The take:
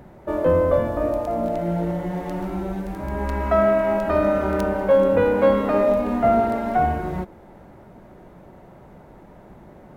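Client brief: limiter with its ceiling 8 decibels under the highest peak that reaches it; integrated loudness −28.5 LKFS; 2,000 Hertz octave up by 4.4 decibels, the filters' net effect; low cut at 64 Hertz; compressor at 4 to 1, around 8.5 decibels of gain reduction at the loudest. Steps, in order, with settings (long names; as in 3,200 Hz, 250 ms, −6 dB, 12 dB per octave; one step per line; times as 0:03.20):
high-pass filter 64 Hz
parametric band 2,000 Hz +6 dB
downward compressor 4 to 1, threshold −22 dBFS
brickwall limiter −20 dBFS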